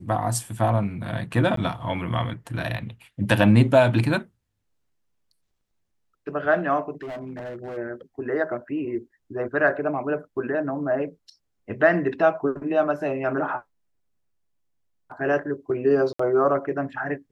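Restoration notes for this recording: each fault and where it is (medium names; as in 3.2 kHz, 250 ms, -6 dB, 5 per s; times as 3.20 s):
1.56–1.57 s: dropout 13 ms
7.02–7.78 s: clipped -31 dBFS
16.13–16.19 s: dropout 64 ms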